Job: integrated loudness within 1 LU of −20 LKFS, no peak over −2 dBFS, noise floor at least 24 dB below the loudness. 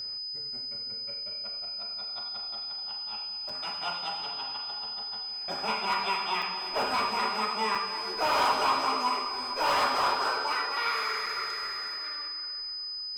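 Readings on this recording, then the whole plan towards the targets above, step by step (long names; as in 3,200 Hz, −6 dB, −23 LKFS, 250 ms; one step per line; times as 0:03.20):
number of dropouts 4; longest dropout 4.1 ms; interfering tone 5,000 Hz; level of the tone −34 dBFS; integrated loudness −30.0 LKFS; sample peak −15.5 dBFS; target loudness −20.0 LKFS
→ repair the gap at 0:03.49/0:06.42/0:07.75/0:11.26, 4.1 ms
notch filter 5,000 Hz, Q 30
level +10 dB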